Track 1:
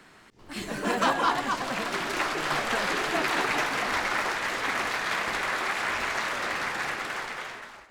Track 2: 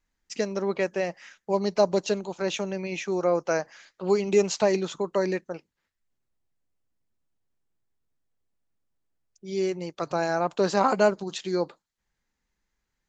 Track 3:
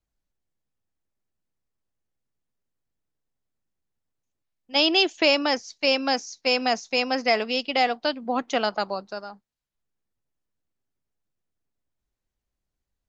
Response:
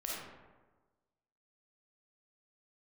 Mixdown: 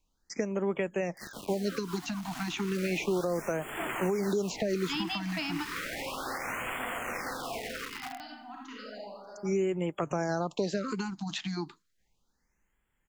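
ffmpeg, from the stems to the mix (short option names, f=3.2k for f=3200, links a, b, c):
-filter_complex "[0:a]acrusher=bits=4:mix=0:aa=0.000001,bandreject=f=1.7k:w=23,adelay=650,volume=-11dB[a];[1:a]volume=3dB,asplit=2[b][c];[2:a]adelay=150,volume=-4.5dB,asplit=2[d][e];[e]volume=-14dB[f];[c]apad=whole_len=583665[g];[d][g]sidechaingate=range=-33dB:threshold=-39dB:ratio=16:detection=peak[h];[a][b]amix=inputs=2:normalize=0,dynaudnorm=f=620:g=9:m=11.5dB,alimiter=limit=-13dB:level=0:latency=1:release=306,volume=0dB[i];[3:a]atrim=start_sample=2205[j];[f][j]afir=irnorm=-1:irlink=0[k];[h][i][k]amix=inputs=3:normalize=0,acrossover=split=290|3200[l][m][n];[l]acompressor=threshold=-32dB:ratio=4[o];[m]acompressor=threshold=-32dB:ratio=4[p];[n]acompressor=threshold=-45dB:ratio=4[q];[o][p][q]amix=inputs=3:normalize=0,afftfilt=real='re*(1-between(b*sr/1024,430*pow(5000/430,0.5+0.5*sin(2*PI*0.33*pts/sr))/1.41,430*pow(5000/430,0.5+0.5*sin(2*PI*0.33*pts/sr))*1.41))':imag='im*(1-between(b*sr/1024,430*pow(5000/430,0.5+0.5*sin(2*PI*0.33*pts/sr))/1.41,430*pow(5000/430,0.5+0.5*sin(2*PI*0.33*pts/sr))*1.41))':win_size=1024:overlap=0.75"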